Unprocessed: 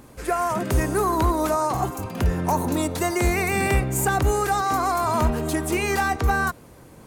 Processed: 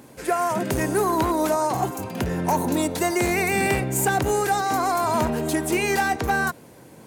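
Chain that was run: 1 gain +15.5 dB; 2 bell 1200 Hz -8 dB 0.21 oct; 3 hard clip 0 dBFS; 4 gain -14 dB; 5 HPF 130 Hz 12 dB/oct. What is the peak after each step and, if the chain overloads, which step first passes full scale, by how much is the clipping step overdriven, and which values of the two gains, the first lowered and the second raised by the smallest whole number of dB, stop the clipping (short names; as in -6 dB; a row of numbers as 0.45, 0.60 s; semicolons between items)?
+3.0, +3.5, 0.0, -14.0, -10.5 dBFS; step 1, 3.5 dB; step 1 +11.5 dB, step 4 -10 dB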